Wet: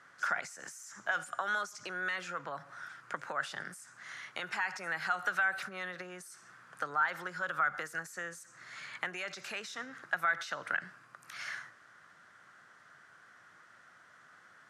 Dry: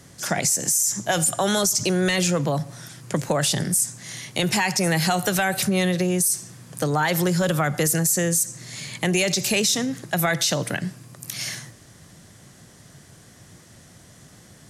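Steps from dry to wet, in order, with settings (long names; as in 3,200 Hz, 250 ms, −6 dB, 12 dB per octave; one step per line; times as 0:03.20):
downward compressor, threshold −24 dBFS, peak gain reduction 7 dB
resonant band-pass 1,400 Hz, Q 4.8
level +6 dB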